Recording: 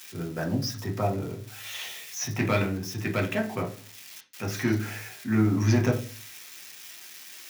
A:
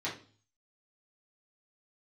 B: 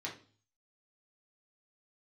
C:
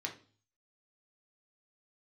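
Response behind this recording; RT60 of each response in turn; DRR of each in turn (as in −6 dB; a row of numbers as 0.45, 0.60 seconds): C; 0.40, 0.40, 0.40 seconds; −8.0, −3.5, 1.0 decibels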